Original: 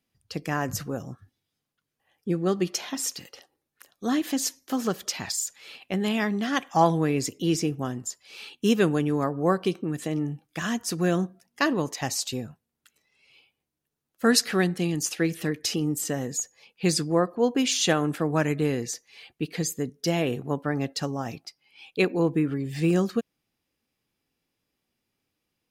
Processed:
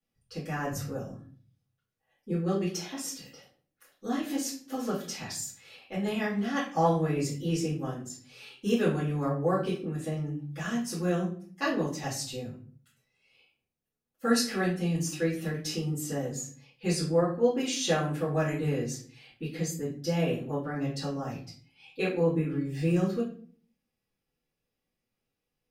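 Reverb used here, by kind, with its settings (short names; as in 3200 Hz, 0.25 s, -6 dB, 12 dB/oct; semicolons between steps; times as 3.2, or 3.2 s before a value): shoebox room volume 38 m³, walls mixed, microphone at 2.2 m; gain -17 dB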